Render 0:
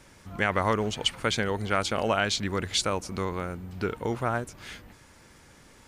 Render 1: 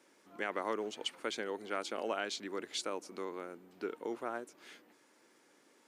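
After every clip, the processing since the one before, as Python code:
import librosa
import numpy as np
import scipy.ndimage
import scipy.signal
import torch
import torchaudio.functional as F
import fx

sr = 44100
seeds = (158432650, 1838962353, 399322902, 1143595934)

y = fx.ladder_highpass(x, sr, hz=260.0, resonance_pct=40)
y = y * librosa.db_to_amplitude(-4.0)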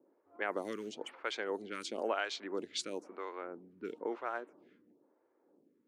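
y = fx.env_lowpass(x, sr, base_hz=490.0, full_db=-32.5)
y = fx.stagger_phaser(y, sr, hz=1.0)
y = y * librosa.db_to_amplitude(3.0)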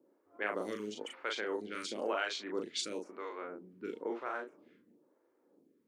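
y = fx.peak_eq(x, sr, hz=760.0, db=-4.0, octaves=0.77)
y = fx.doubler(y, sr, ms=38.0, db=-3.5)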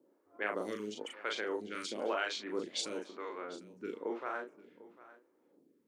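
y = x + 10.0 ** (-18.5 / 20.0) * np.pad(x, (int(748 * sr / 1000.0), 0))[:len(x)]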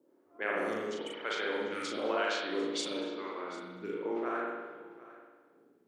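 y = fx.rev_spring(x, sr, rt60_s=1.3, pass_ms=(55,), chirp_ms=45, drr_db=-2.0)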